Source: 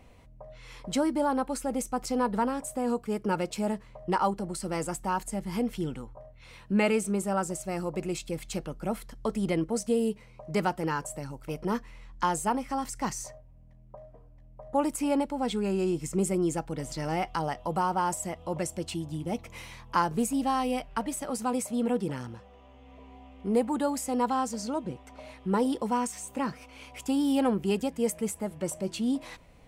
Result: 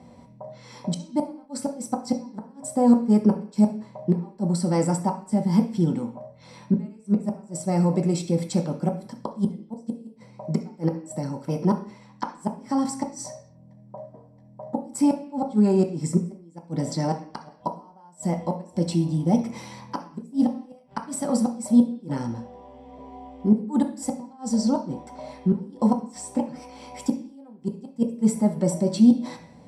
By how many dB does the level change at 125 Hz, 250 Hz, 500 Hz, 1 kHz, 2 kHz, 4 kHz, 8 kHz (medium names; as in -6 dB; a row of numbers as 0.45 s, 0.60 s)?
+9.5 dB, +7.5 dB, +1.0 dB, -2.5 dB, -8.5 dB, -1.0 dB, 0.0 dB